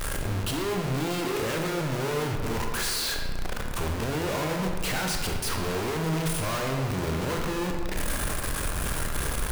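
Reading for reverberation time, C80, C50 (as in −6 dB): 1.8 s, 5.0 dB, 3.5 dB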